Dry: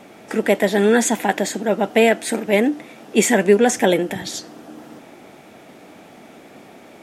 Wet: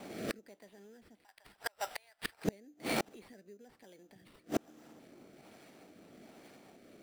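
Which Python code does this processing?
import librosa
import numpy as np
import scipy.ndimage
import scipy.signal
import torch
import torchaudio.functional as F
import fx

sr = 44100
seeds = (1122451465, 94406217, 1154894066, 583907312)

y = fx.recorder_agc(x, sr, target_db=-6.0, rise_db_per_s=43.0, max_gain_db=30)
y = fx.highpass(y, sr, hz=850.0, slope=24, at=(1.23, 2.44), fade=0.02)
y = fx.gate_flip(y, sr, shuts_db=-13.0, range_db=-37)
y = fx.sample_hold(y, sr, seeds[0], rate_hz=6600.0, jitter_pct=0)
y = fx.rotary(y, sr, hz=1.2)
y = F.gain(torch.from_numpy(y), -3.0).numpy()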